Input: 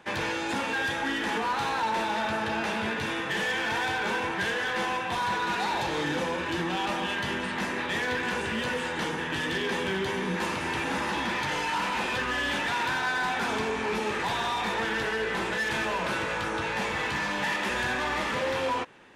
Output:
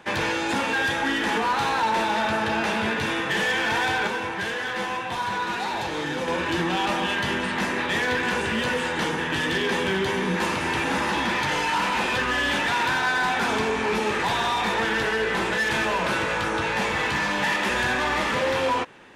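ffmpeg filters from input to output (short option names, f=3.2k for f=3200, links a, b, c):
-filter_complex "[0:a]asettb=1/sr,asplit=3[a][b][c];[a]atrim=end=4.074[d];[b]atrim=start=4.07:end=6.28,asetpts=PTS-STARTPTS,afade=t=in:d=0.004:c=qsin,afade=t=out:st=2.206:d=0.004:c=qsin,flanger=delay=7.6:depth=2.6:regen=70:speed=1.9:shape=sinusoidal[e];[c]atrim=start=6.276[f];[d][e]acrossfade=d=0.004:c1=hsin:c2=qsin[g];[g][f]acrossfade=d=0.004:c1=qsin:c2=hsin,volume=5dB"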